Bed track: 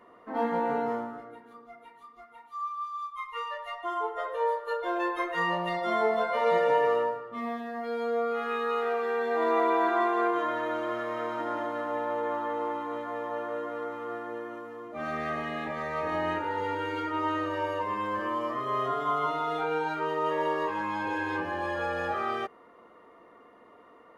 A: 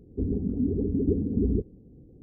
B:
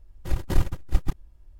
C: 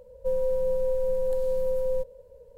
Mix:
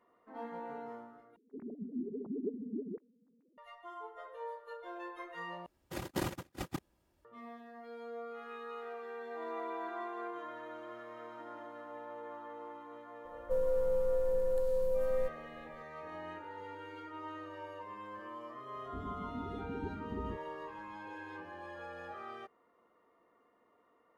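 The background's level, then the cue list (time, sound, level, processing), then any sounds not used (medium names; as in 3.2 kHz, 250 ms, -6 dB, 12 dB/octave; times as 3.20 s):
bed track -15.5 dB
1.36 s: replace with A -14.5 dB + formants replaced by sine waves
5.66 s: replace with B -2.5 dB + high-pass 210 Hz
13.25 s: add C -5.5 dB
18.75 s: add A -16.5 dB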